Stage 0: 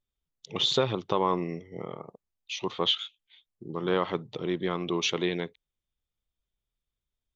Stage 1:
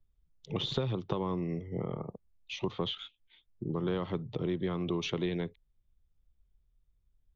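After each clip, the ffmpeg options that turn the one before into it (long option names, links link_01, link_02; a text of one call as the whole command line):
ffmpeg -i in.wav -filter_complex "[0:a]aemphasis=mode=reproduction:type=riaa,acrossover=split=100|380|3200[link_01][link_02][link_03][link_04];[link_01]acompressor=threshold=-46dB:ratio=4[link_05];[link_02]acompressor=threshold=-35dB:ratio=4[link_06];[link_03]acompressor=threshold=-37dB:ratio=4[link_07];[link_04]acompressor=threshold=-39dB:ratio=4[link_08];[link_05][link_06][link_07][link_08]amix=inputs=4:normalize=0" out.wav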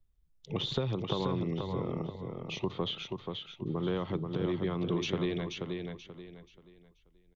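ffmpeg -i in.wav -af "aecho=1:1:482|964|1446|1928:0.562|0.169|0.0506|0.0152" out.wav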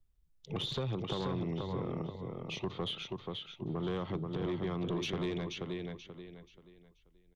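ffmpeg -i in.wav -af "asoftclip=type=tanh:threshold=-27dB,volume=-1dB" out.wav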